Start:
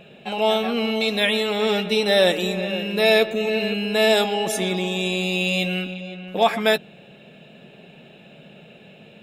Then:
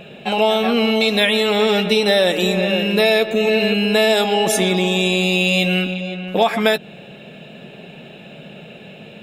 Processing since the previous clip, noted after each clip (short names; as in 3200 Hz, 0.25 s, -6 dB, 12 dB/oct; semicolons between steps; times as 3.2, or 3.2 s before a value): compressor, threshold -20 dBFS, peak gain reduction 8 dB; gain +8 dB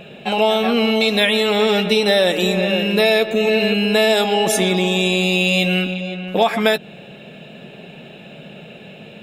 nothing audible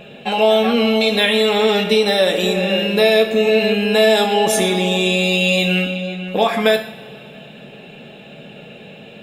two-slope reverb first 0.54 s, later 2.8 s, from -19 dB, DRR 4.5 dB; gain -1 dB